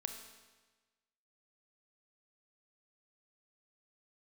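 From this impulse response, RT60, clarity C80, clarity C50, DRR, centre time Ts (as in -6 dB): 1.3 s, 8.5 dB, 7.0 dB, 5.5 dB, 27 ms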